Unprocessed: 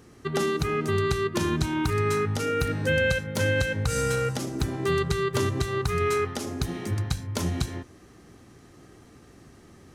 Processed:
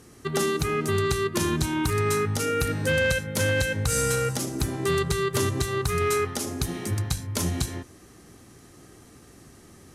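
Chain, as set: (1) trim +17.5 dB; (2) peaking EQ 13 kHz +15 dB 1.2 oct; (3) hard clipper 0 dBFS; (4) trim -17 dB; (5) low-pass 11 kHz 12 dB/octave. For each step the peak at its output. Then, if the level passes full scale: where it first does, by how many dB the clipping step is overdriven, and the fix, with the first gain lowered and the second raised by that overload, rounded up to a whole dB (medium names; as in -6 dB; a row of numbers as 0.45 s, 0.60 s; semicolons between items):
+5.0 dBFS, +9.5 dBFS, 0.0 dBFS, -17.0 dBFS, -15.0 dBFS; step 1, 9.5 dB; step 1 +7.5 dB, step 4 -7 dB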